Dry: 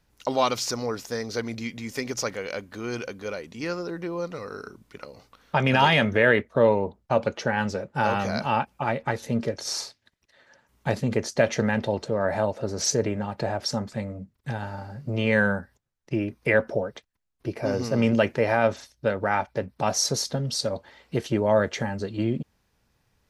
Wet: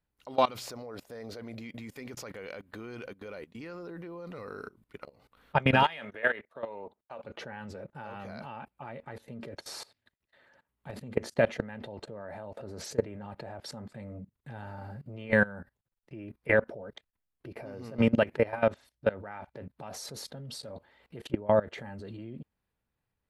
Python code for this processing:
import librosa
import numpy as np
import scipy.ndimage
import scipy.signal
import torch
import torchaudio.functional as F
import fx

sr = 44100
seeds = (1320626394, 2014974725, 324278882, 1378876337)

y = fx.peak_eq(x, sr, hz=610.0, db=8.0, octaves=0.66, at=(0.6, 1.8))
y = fx.highpass(y, sr, hz=820.0, slope=6, at=(5.83, 7.24))
y = fx.high_shelf(y, sr, hz=2500.0, db=-4.0, at=(21.27, 21.78))
y = fx.peak_eq(y, sr, hz=5900.0, db=-13.0, octaves=0.7)
y = fx.level_steps(y, sr, step_db=21)